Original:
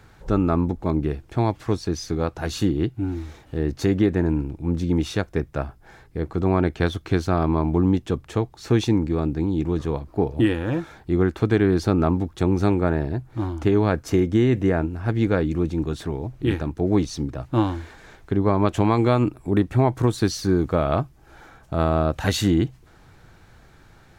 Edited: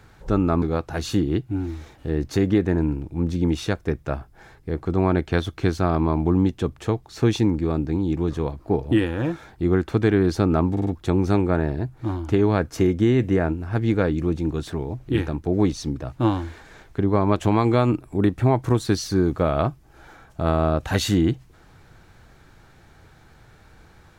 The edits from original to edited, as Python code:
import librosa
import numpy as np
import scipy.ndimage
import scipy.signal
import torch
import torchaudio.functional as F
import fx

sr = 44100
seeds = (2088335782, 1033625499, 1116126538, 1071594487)

y = fx.edit(x, sr, fx.cut(start_s=0.62, length_s=1.48),
    fx.stutter(start_s=12.19, slice_s=0.05, count=4), tone=tone)